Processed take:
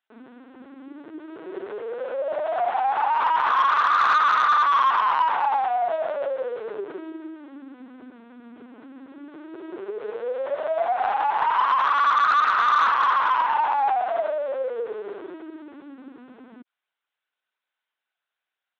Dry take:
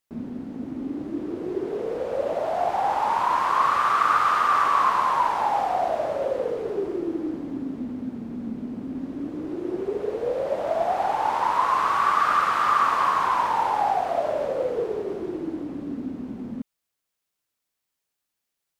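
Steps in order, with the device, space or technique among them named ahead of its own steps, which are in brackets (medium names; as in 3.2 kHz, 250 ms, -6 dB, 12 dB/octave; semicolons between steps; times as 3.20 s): talking toy (LPC vocoder at 8 kHz pitch kept; high-pass 570 Hz 12 dB/octave; peaking EQ 1.5 kHz +8 dB 0.23 oct; saturation -14.5 dBFS, distortion -18 dB); 4.62–5.64 s: high-pass 79 Hz; trim +2.5 dB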